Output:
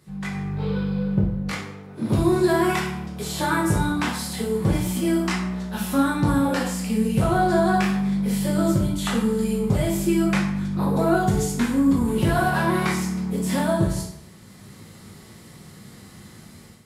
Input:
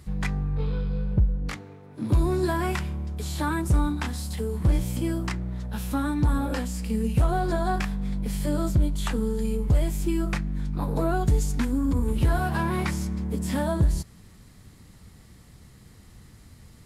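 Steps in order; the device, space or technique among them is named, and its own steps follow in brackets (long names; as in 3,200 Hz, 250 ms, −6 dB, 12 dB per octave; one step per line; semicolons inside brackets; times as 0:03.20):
far laptop microphone (convolution reverb RT60 0.70 s, pre-delay 4 ms, DRR −3 dB; high-pass filter 130 Hz 12 dB per octave; automatic gain control gain up to 11.5 dB)
level −6.5 dB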